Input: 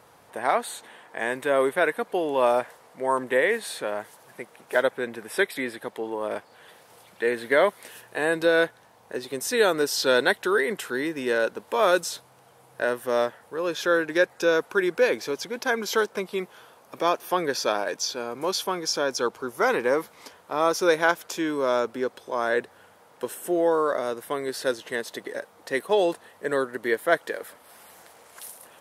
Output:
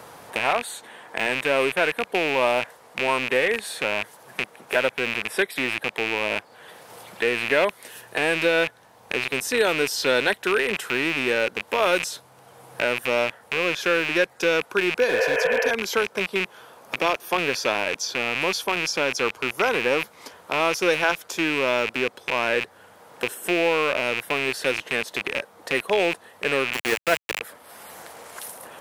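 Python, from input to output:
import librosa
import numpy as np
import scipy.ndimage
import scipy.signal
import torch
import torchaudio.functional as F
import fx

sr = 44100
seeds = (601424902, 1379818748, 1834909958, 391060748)

y = fx.rattle_buzz(x, sr, strikes_db=-47.0, level_db=-14.0)
y = fx.spec_repair(y, sr, seeds[0], start_s=15.11, length_s=0.57, low_hz=410.0, high_hz=3200.0, source='before')
y = fx.sample_gate(y, sr, floor_db=-22.0, at=(26.73, 27.41))
y = fx.band_squash(y, sr, depth_pct=40)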